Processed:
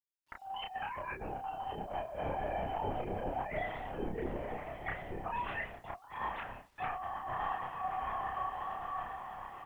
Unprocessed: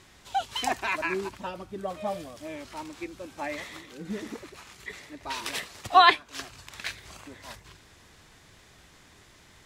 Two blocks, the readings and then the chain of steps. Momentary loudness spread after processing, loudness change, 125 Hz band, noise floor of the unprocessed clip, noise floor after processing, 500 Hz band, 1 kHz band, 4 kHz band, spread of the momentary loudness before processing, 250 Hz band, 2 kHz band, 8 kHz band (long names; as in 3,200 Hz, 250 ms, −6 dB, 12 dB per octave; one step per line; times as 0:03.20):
6 LU, −10.5 dB, +1.5 dB, −56 dBFS, −61 dBFS, −5.0 dB, −8.0 dB, −19.0 dB, 21 LU, −6.5 dB, −10.5 dB, below −25 dB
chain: three sine waves on the formant tracks
high-frequency loss of the air 460 metres
feedback delay with all-pass diffusion 1,149 ms, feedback 46%, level −14 dB
coupled-rooms reverb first 0.66 s, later 1.8 s, from −23 dB, DRR 10.5 dB
noise gate with hold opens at −47 dBFS
linear-prediction vocoder at 8 kHz whisper
compressor whose output falls as the input rises −44 dBFS, ratio −1
bit reduction 12 bits
double-tracking delay 31 ms −3 dB